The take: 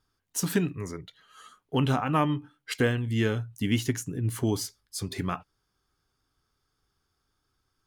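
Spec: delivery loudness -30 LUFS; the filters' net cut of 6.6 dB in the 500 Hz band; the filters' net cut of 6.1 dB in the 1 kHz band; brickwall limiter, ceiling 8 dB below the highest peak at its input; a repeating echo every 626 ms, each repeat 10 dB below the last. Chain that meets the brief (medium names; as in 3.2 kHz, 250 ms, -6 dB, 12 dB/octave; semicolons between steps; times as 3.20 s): peaking EQ 500 Hz -7.5 dB; peaking EQ 1 kHz -6 dB; peak limiter -23 dBFS; feedback delay 626 ms, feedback 32%, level -10 dB; trim +4 dB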